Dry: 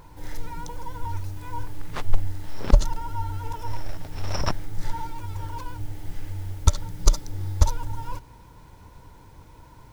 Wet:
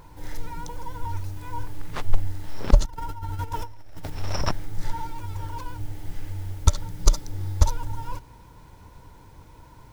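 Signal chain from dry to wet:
0:02.85–0:04.10: compressor whose output falls as the input rises −32 dBFS, ratio −1

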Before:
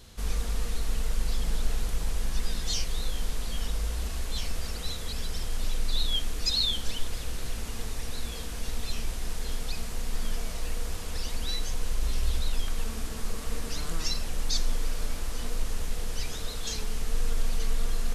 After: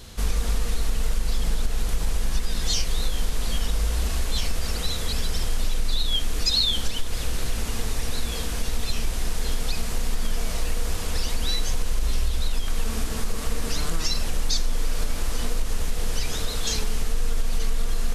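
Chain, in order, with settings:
downward compressor, threshold −25 dBFS, peak gain reduction 8 dB
level +8 dB

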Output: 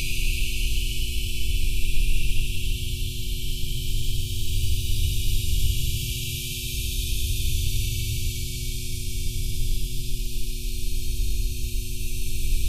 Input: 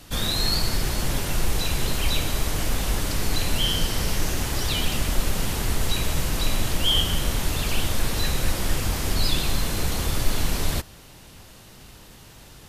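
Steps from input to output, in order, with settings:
brick-wall band-stop 140–2,300 Hz
rotating-speaker cabinet horn 0.8 Hz, later 5.5 Hz, at 0:05.17
extreme stretch with random phases 45×, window 0.05 s, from 0:07.74
hum with harmonics 120 Hz, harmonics 3, −42 dBFS −4 dB per octave

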